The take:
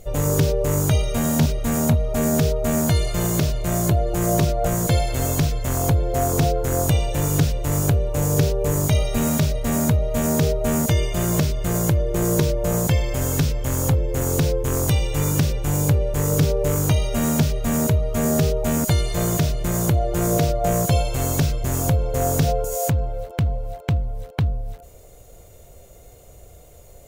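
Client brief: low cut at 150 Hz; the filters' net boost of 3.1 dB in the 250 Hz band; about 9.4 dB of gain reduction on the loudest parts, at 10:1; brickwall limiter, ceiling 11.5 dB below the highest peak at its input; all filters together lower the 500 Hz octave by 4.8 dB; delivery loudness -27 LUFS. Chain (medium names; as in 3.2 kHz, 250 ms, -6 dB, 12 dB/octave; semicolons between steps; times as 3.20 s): high-pass 150 Hz; peaking EQ 250 Hz +7.5 dB; peaking EQ 500 Hz -8.5 dB; compression 10:1, threshold -23 dBFS; trim +5 dB; peak limiter -17.5 dBFS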